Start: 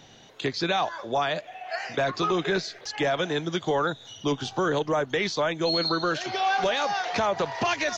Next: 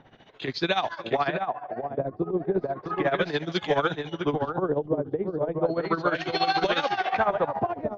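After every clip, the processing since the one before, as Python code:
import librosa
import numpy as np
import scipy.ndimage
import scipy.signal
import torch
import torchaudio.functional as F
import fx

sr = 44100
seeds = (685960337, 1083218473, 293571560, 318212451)

y = fx.echo_multitap(x, sr, ms=(377, 664), db=(-19.5, -4.5))
y = fx.filter_lfo_lowpass(y, sr, shape='sine', hz=0.34, low_hz=430.0, high_hz=4100.0, q=1.0)
y = y * (1.0 - 0.79 / 2.0 + 0.79 / 2.0 * np.cos(2.0 * np.pi * 14.0 * (np.arange(len(y)) / sr)))
y = y * librosa.db_to_amplitude(2.5)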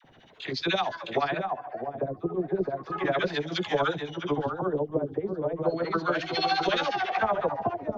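y = fx.high_shelf(x, sr, hz=5600.0, db=6.0)
y = fx.dispersion(y, sr, late='lows', ms=46.0, hz=850.0)
y = y * librosa.db_to_amplitude(-2.0)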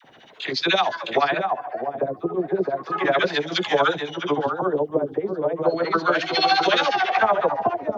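y = fx.highpass(x, sr, hz=370.0, slope=6)
y = y * librosa.db_to_amplitude(8.0)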